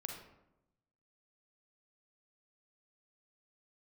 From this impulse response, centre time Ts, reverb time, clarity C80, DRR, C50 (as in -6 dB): 36 ms, 0.90 s, 7.0 dB, 1.5 dB, 3.5 dB